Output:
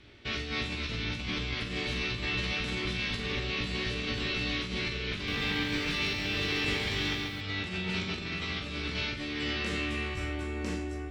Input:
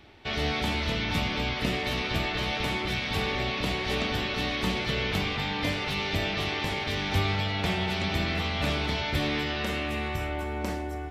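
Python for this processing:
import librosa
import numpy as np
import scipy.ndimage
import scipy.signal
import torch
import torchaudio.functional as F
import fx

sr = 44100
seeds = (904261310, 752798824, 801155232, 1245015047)

y = scipy.signal.sosfilt(scipy.signal.butter(4, 9200.0, 'lowpass', fs=sr, output='sos'), x)
y = fx.peak_eq(y, sr, hz=780.0, db=-12.0, octaves=0.74)
y = fx.over_compress(y, sr, threshold_db=-31.0, ratio=-0.5)
y = fx.comb_fb(y, sr, f0_hz=58.0, decay_s=0.23, harmonics='all', damping=0.0, mix_pct=90)
y = fx.room_flutter(y, sr, wall_m=7.4, rt60_s=0.33)
y = fx.echo_crushed(y, sr, ms=136, feedback_pct=35, bits=10, wet_db=-3, at=(5.14, 7.41))
y = F.gain(torch.from_numpy(y), 3.5).numpy()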